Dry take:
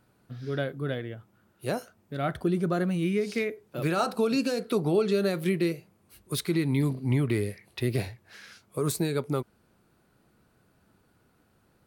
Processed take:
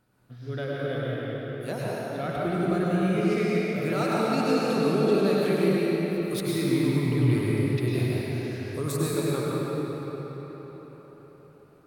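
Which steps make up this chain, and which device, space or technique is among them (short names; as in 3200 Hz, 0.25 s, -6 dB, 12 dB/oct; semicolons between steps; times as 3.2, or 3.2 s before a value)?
cathedral (reverb RT60 5.1 s, pre-delay 92 ms, DRR -7 dB); gain -4.5 dB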